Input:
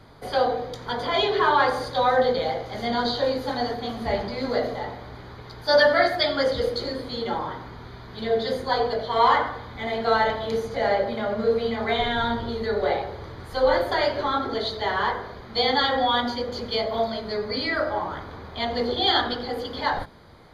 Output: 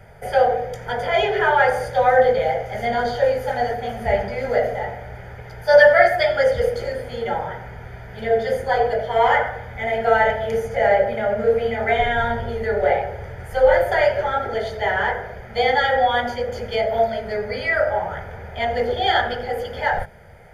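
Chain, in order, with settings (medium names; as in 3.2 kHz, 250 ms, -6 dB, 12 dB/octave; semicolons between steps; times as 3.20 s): static phaser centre 1.1 kHz, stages 6; trim +7 dB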